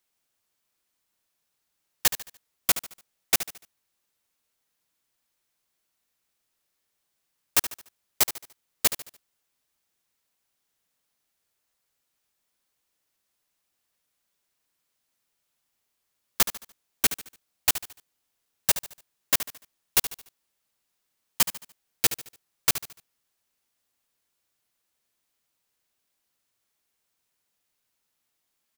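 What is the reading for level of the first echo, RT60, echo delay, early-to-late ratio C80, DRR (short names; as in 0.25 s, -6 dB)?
-12.0 dB, none, 73 ms, none, none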